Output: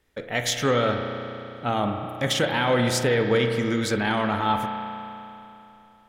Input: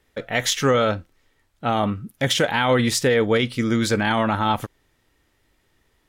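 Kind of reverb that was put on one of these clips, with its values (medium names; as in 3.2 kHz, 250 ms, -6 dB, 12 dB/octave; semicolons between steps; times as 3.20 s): spring tank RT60 3 s, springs 33 ms, chirp 30 ms, DRR 4.5 dB; trim -4 dB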